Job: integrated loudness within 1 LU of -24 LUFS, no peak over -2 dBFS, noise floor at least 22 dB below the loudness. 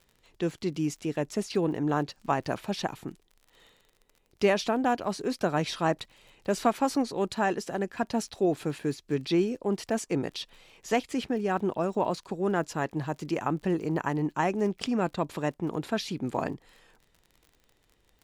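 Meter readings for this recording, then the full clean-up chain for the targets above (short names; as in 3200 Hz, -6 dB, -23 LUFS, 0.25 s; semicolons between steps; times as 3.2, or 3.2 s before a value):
ticks 38/s; loudness -30.0 LUFS; peak -12.0 dBFS; loudness target -24.0 LUFS
-> de-click; gain +6 dB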